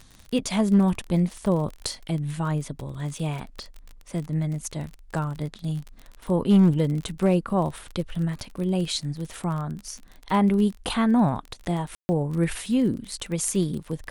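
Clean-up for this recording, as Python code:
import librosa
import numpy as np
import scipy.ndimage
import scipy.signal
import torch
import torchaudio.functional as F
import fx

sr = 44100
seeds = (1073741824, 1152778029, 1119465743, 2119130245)

y = fx.fix_declip(x, sr, threshold_db=-11.5)
y = fx.fix_declick_ar(y, sr, threshold=6.5)
y = fx.fix_ambience(y, sr, seeds[0], print_start_s=9.79, print_end_s=10.29, start_s=11.95, end_s=12.09)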